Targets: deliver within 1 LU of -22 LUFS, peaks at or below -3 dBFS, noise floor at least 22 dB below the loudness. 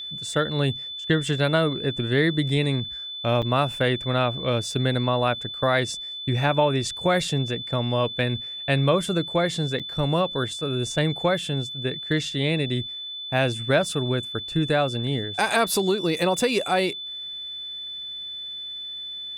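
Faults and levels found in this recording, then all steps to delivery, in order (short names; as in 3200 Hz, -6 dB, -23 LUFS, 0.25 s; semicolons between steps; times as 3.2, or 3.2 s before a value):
dropouts 2; longest dropout 6.7 ms; steady tone 3500 Hz; tone level -32 dBFS; loudness -24.5 LUFS; peak -6.5 dBFS; loudness target -22.0 LUFS
-> interpolate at 3.42/9.79, 6.7 ms; notch 3500 Hz, Q 30; gain +2.5 dB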